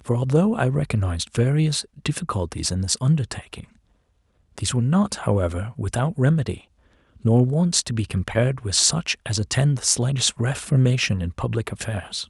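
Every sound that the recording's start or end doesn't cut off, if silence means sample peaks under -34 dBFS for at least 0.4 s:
4.58–6.58 s

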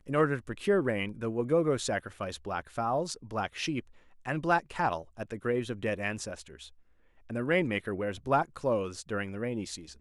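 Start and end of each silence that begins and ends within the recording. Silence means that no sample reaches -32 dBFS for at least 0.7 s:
6.40–7.31 s

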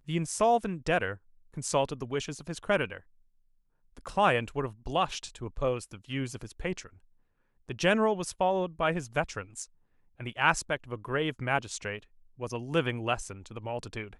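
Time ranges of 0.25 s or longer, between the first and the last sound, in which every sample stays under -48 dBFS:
1.17–1.54 s
3.00–3.97 s
6.89–7.69 s
9.65–10.20 s
12.03–12.39 s

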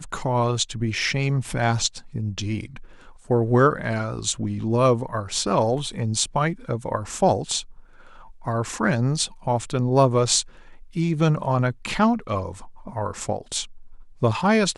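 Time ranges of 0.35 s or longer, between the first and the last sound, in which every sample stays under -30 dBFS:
2.77–3.30 s
7.61–8.47 s
10.42–10.96 s
13.64–14.22 s

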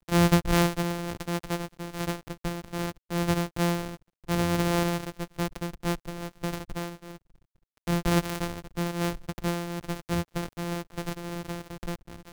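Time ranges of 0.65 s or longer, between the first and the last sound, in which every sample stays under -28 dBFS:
6.86–7.87 s

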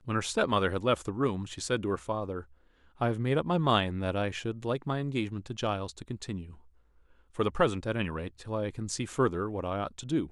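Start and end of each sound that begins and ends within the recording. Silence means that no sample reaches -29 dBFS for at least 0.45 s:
3.01–6.35 s

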